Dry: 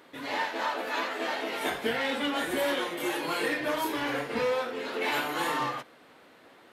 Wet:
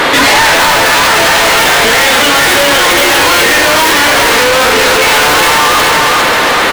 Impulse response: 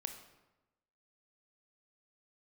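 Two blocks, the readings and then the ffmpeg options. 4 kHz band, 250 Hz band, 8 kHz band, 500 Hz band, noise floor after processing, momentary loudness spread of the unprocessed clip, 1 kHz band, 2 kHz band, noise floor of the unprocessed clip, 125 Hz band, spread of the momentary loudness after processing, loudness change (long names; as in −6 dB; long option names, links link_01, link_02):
+27.5 dB, +17.0 dB, +32.5 dB, +20.0 dB, −9 dBFS, 3 LU, +24.0 dB, +25.5 dB, −56 dBFS, +24.5 dB, 1 LU, +24.0 dB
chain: -filter_complex "[0:a]asplit=2[link_01][link_02];[link_02]highpass=frequency=720:poles=1,volume=38dB,asoftclip=type=tanh:threshold=-16.5dB[link_03];[link_01][link_03]amix=inputs=2:normalize=0,lowpass=frequency=5200:poles=1,volume=-6dB,aecho=1:1:406|812|1218|1624|2030|2436|2842:0.631|0.334|0.177|0.0939|0.0498|0.0264|0.014,apsyclip=26dB,volume=-5.5dB"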